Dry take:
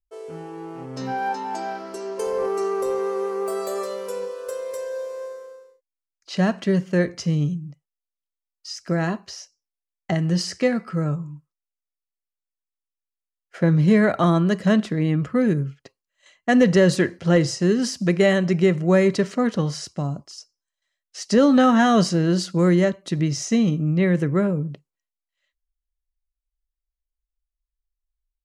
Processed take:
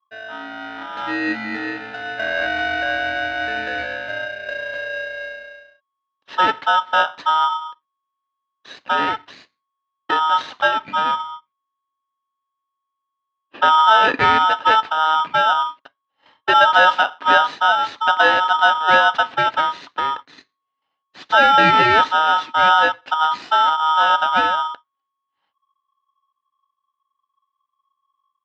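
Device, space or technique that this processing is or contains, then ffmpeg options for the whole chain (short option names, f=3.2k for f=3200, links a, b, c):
ring modulator pedal into a guitar cabinet: -filter_complex "[0:a]aeval=exprs='val(0)*sgn(sin(2*PI*1100*n/s))':c=same,highpass=110,equalizer=f=280:t=q:w=4:g=8,equalizer=f=1.1k:t=q:w=4:g=8,equalizer=f=1.7k:t=q:w=4:g=3,lowpass=f=3.6k:w=0.5412,lowpass=f=3.6k:w=1.3066,asettb=1/sr,asplit=3[a][b][c];[a]atrim=end=11.314[d];[b]atrim=start=11.31:end=13.65,asetpts=PTS-STARTPTS,afade=t=in:d=0.004:c=qsin,afade=t=out:st=2.336:d=0.004:c=qsin,lowpass=5.9k[e];[c]atrim=start=13.646[f];[d][e]acrossfade=d=0.004:c1=hsin:c2=qsin[g];[g][f]acrossfade=d=0.004:c1=qsin:c2=hsin,volume=1dB"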